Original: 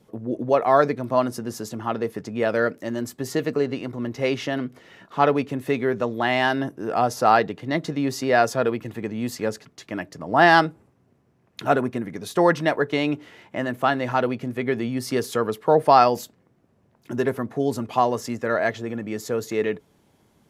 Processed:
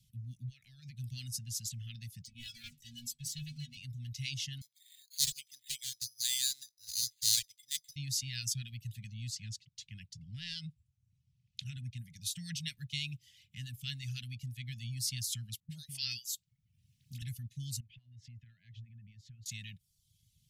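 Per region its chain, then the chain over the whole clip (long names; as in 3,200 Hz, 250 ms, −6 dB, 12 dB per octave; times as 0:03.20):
0:00.45–0:00.99: downward compressor 8 to 1, threshold −25 dBFS + high-shelf EQ 3,900 Hz −5 dB
0:02.25–0:03.77: stiff-string resonator 71 Hz, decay 0.49 s, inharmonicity 0.03 + dynamic equaliser 3,200 Hz, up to +4 dB, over −53 dBFS, Q 1.5 + leveller curve on the samples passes 2
0:04.61–0:07.96: elliptic band-pass filter 430–2,200 Hz + bad sample-rate conversion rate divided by 8×, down none, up hold + highs frequency-modulated by the lows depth 0.15 ms
0:09.14–0:11.99: downward compressor 10 to 1, threshold −16 dBFS + high-frequency loss of the air 63 metres
0:15.60–0:17.22: low-shelf EQ 260 Hz −8.5 dB + all-pass dispersion highs, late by 99 ms, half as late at 620 Hz + multiband upward and downward compressor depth 40%
0:17.80–0:19.46: low-pass filter 1,700 Hz + downward compressor 3 to 1, threshold −35 dBFS
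whole clip: reverb reduction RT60 0.61 s; inverse Chebyshev band-stop filter 340–1,200 Hz, stop band 60 dB; dynamic equaliser 7,600 Hz, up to +4 dB, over −53 dBFS, Q 1.1; level −2 dB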